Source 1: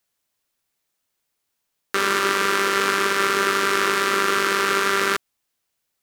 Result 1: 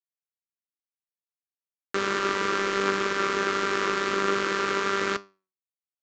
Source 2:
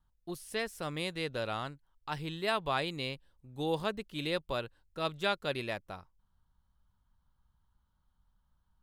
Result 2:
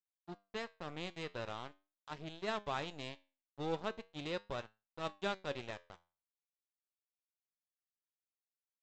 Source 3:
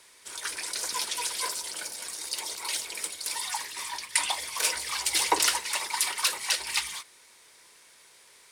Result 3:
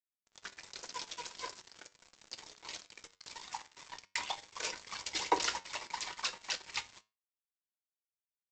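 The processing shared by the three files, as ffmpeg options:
ffmpeg -i in.wav -af "tiltshelf=frequency=970:gain=3.5,aresample=16000,aeval=exprs='sgn(val(0))*max(abs(val(0))-0.0126,0)':channel_layout=same,aresample=44100,flanger=delay=9.1:depth=2.6:regen=80:speed=0.42:shape=triangular" out.wav

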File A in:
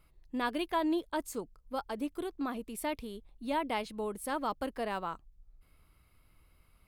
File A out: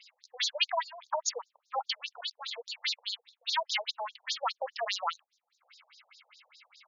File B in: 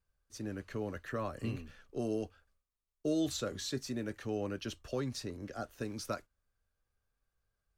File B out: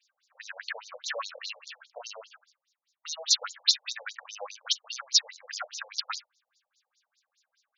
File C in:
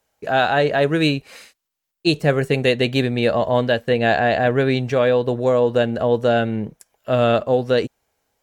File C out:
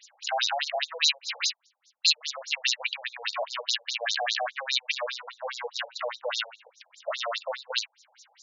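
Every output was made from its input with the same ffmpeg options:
ffmpeg -i in.wav -af "asubboost=boost=7.5:cutoff=81,aeval=exprs='0.668*(cos(1*acos(clip(val(0)/0.668,-1,1)))-cos(1*PI/2))+0.0944*(cos(5*acos(clip(val(0)/0.668,-1,1)))-cos(5*PI/2))+0.0841*(cos(6*acos(clip(val(0)/0.668,-1,1)))-cos(6*PI/2))':channel_layout=same,acompressor=threshold=-30dB:ratio=4,asoftclip=type=tanh:threshold=-28dB,aderivative,alimiter=level_in=27dB:limit=-1dB:release=50:level=0:latency=1,afftfilt=real='re*between(b*sr/1024,610*pow(5200/610,0.5+0.5*sin(2*PI*4.9*pts/sr))/1.41,610*pow(5200/610,0.5+0.5*sin(2*PI*4.9*pts/sr))*1.41)':imag='im*between(b*sr/1024,610*pow(5200/610,0.5+0.5*sin(2*PI*4.9*pts/sr))/1.41,610*pow(5200/610,0.5+0.5*sin(2*PI*4.9*pts/sr))*1.41)':win_size=1024:overlap=0.75" out.wav

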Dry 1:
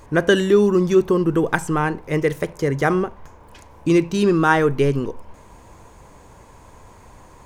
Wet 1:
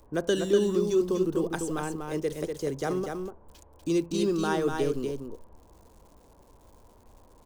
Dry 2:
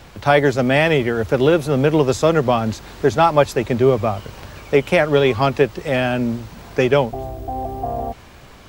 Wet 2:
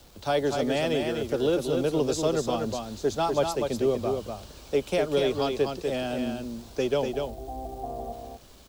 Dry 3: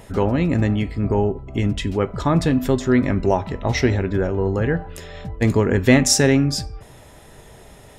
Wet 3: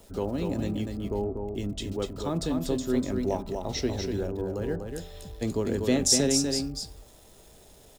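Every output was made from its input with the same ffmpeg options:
ffmpeg -i in.wav -filter_complex "[0:a]equalizer=frequency=125:width_type=o:width=1:gain=-8,equalizer=frequency=1000:width_type=o:width=1:gain=-4,equalizer=frequency=2000:width_type=o:width=1:gain=-11,equalizer=frequency=4000:width_type=o:width=1:gain=5,equalizer=frequency=8000:width_type=o:width=1:gain=4,aecho=1:1:244:0.562,acrossover=split=240|860|1900[link_01][link_02][link_03][link_04];[link_04]acrusher=bits=7:mix=0:aa=0.000001[link_05];[link_01][link_02][link_03][link_05]amix=inputs=4:normalize=0,volume=-8.5dB" out.wav

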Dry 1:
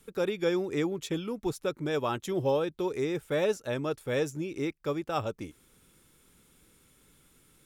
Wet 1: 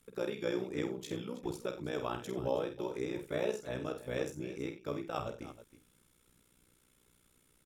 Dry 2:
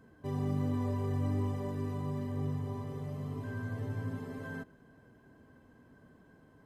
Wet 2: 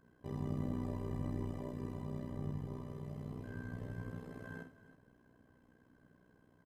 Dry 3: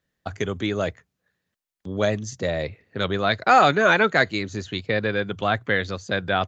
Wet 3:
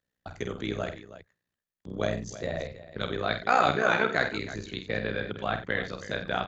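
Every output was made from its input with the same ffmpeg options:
ffmpeg -i in.wav -af "tremolo=f=61:d=0.889,aecho=1:1:48|90|322:0.422|0.178|0.188,volume=-4dB" out.wav

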